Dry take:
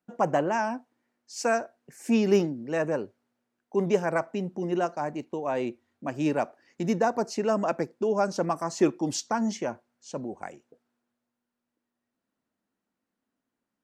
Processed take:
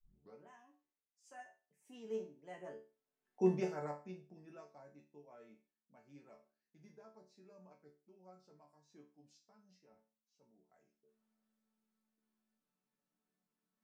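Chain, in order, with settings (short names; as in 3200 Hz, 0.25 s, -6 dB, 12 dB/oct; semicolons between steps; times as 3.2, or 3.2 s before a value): tape start at the beginning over 0.51 s; Doppler pass-by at 3.36, 32 m/s, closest 3.4 m; reverse; upward compressor, threshold -60 dBFS; reverse; resonator bank D3 major, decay 0.33 s; gain +11.5 dB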